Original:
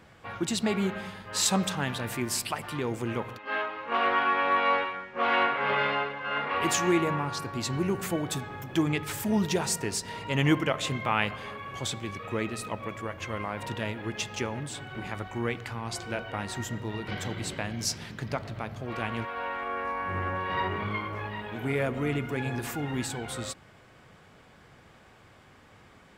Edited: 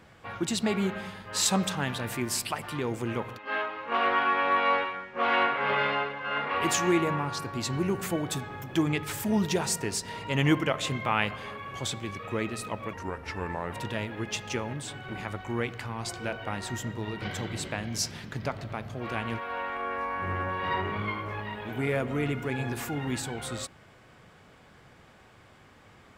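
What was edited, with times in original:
0:12.93–0:13.59: play speed 83%

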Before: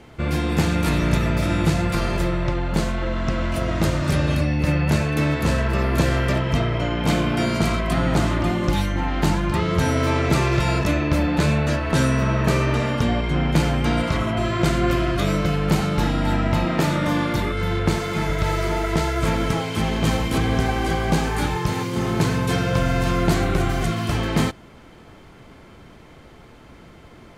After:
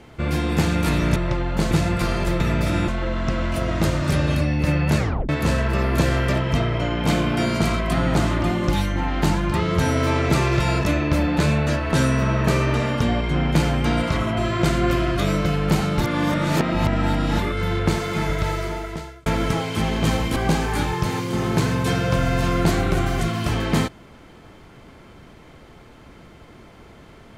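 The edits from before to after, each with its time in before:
0:01.16–0:01.64: swap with 0:02.33–0:02.88
0:04.98: tape stop 0.31 s
0:16.01–0:17.39: reverse
0:18.31–0:19.26: fade out linear
0:20.36–0:20.99: remove

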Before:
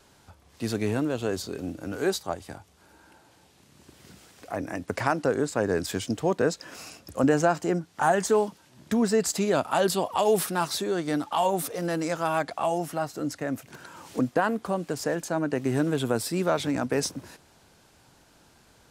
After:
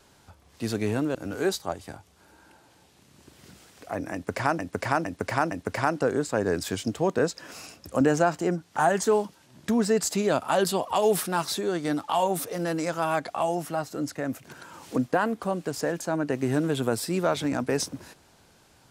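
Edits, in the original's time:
0:01.15–0:01.76: remove
0:04.74–0:05.20: repeat, 4 plays

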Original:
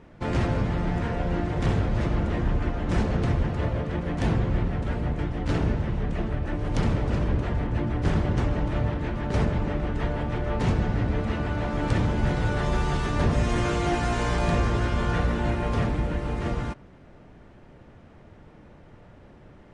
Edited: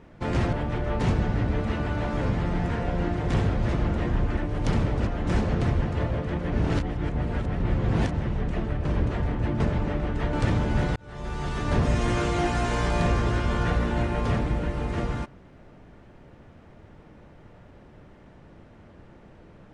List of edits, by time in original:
0:04.14–0:05.76: reverse
0:06.47–0:07.17: move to 0:02.69
0:07.92–0:09.40: remove
0:10.13–0:11.81: move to 0:00.53
0:12.44–0:13.27: fade in

